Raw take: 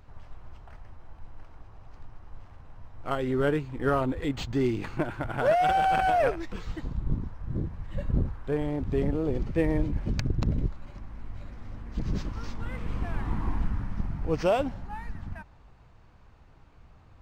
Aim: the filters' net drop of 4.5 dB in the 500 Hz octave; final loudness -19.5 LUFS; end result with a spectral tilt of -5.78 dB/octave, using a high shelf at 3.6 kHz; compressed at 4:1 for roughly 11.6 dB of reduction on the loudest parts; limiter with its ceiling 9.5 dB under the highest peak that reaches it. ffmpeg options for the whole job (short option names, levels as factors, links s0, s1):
-af "equalizer=f=500:t=o:g=-6,highshelf=f=3600:g=4,acompressor=threshold=0.0158:ratio=4,volume=16.8,alimiter=limit=0.422:level=0:latency=1"